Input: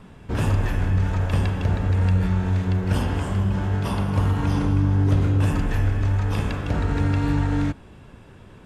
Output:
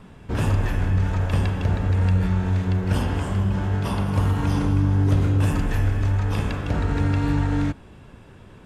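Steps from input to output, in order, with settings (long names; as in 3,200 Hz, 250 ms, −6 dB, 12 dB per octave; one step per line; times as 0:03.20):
0:04.06–0:06.11: high-shelf EQ 7,800 Hz +5 dB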